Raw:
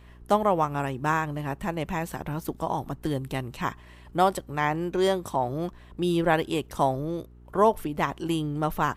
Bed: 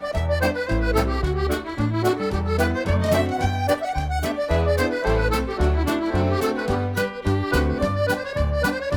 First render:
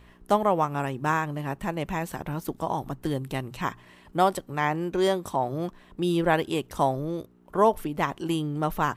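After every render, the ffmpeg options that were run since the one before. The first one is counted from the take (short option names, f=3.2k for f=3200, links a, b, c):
-af "bandreject=f=60:t=h:w=4,bandreject=f=120:t=h:w=4"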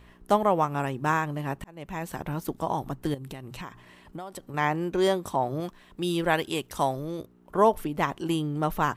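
-filter_complex "[0:a]asettb=1/sr,asplit=3[a][b][c];[a]atrim=end=3.144[d];[b]atrim=start=3.14:end=4.54,asetpts=PTS-STARTPTS,afade=t=in:d=0.004:c=qsin,afade=t=out:st=1.396:d=0.004:c=qsin,acompressor=threshold=-34dB:ratio=12:attack=3.2:release=140:knee=1:detection=peak[e];[c]atrim=start=4.536[f];[d][e]acrossfade=d=0.004:c1=hsin:c2=qsin[g];[g][f]acrossfade=d=0.004:c1=qsin:c2=hsin,asettb=1/sr,asplit=3[h][i][j];[h]atrim=end=5.604[k];[i]atrim=start=5.6:end=7.19,asetpts=PTS-STARTPTS,afade=t=in:d=0.004:c=qsin,afade=t=out:st=1.586:d=0.004:c=qsin,tiltshelf=f=1.5k:g=-3.5[l];[j]atrim=start=7.186[m];[k][l]acrossfade=d=0.004:c1=hsin:c2=qsin[n];[n][m]acrossfade=d=0.004:c1=qsin:c2=hsin,asplit=2[o][p];[o]atrim=end=1.64,asetpts=PTS-STARTPTS,afade=t=out:st=1.636:d=0.004:c=hsin[q];[p]atrim=start=1.64,asetpts=PTS-STARTPTS,afade=t=in:d=0.55[r];[q][r]concat=n=2:v=0:a=1"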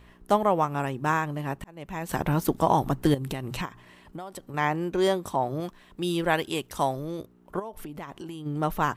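-filter_complex "[0:a]asettb=1/sr,asplit=3[a][b][c];[a]atrim=end=2.094[d];[b]atrim=start=2.09:end=3.66,asetpts=PTS-STARTPTS,afade=t=in:d=0.004:c=qsin,afade=t=out:st=1.566:d=0.004:c=qsin,acontrast=86[e];[c]atrim=start=3.656[f];[d][e]acrossfade=d=0.004:c1=hsin:c2=qsin[g];[g][f]acrossfade=d=0.004:c1=qsin:c2=hsin,asplit=3[h][i][j];[h]afade=t=out:st=7.58:d=0.02[k];[i]acompressor=threshold=-35dB:ratio=6:attack=3.2:release=140:knee=1:detection=peak,afade=t=in:st=7.58:d=0.02,afade=t=out:st=8.45:d=0.02[l];[j]afade=t=in:st=8.45:d=0.02[m];[k][l][m]amix=inputs=3:normalize=0"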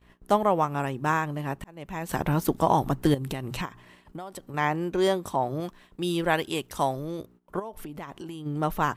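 -af "agate=range=-17dB:threshold=-52dB:ratio=16:detection=peak"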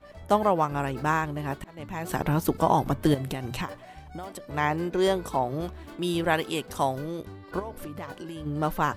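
-filter_complex "[1:a]volume=-22dB[a];[0:a][a]amix=inputs=2:normalize=0"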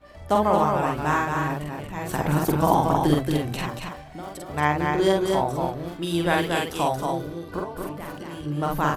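-filter_complex "[0:a]asplit=2[a][b];[b]adelay=47,volume=-2dB[c];[a][c]amix=inputs=2:normalize=0,aecho=1:1:229:0.631"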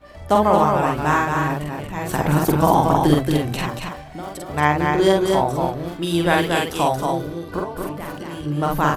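-af "volume=4.5dB,alimiter=limit=-2dB:level=0:latency=1"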